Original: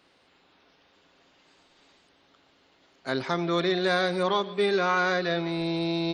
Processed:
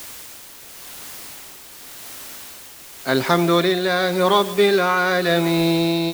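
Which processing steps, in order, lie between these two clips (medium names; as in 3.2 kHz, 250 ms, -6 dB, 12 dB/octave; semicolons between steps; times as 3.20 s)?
level rider gain up to 13 dB; word length cut 6-bit, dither triangular; tremolo 0.9 Hz, depth 46%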